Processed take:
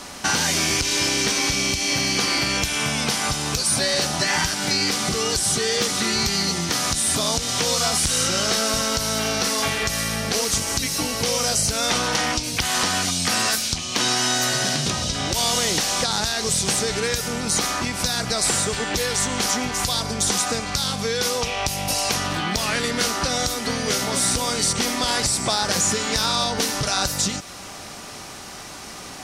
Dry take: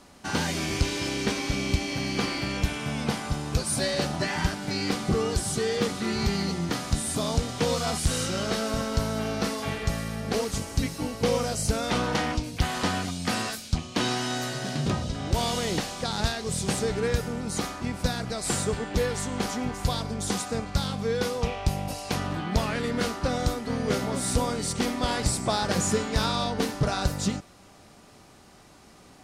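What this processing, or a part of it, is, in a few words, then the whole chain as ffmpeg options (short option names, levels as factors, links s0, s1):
mastering chain: -filter_complex "[0:a]equalizer=f=5800:t=o:w=0.23:g=4,acrossover=split=2300|4700[s0][s1][s2];[s0]acompressor=threshold=0.0224:ratio=4[s3];[s1]acompressor=threshold=0.00562:ratio=4[s4];[s2]acompressor=threshold=0.0126:ratio=4[s5];[s3][s4][s5]amix=inputs=3:normalize=0,acompressor=threshold=0.0112:ratio=1.5,tiltshelf=f=720:g=-4.5,asoftclip=type=hard:threshold=0.0891,alimiter=level_in=13.3:limit=0.891:release=50:level=0:latency=1,volume=0.398"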